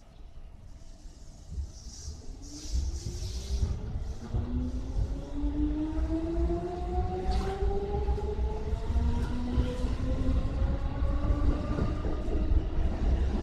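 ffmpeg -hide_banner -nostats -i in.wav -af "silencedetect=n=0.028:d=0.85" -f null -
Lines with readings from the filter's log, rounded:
silence_start: 0.00
silence_end: 1.57 | silence_duration: 1.57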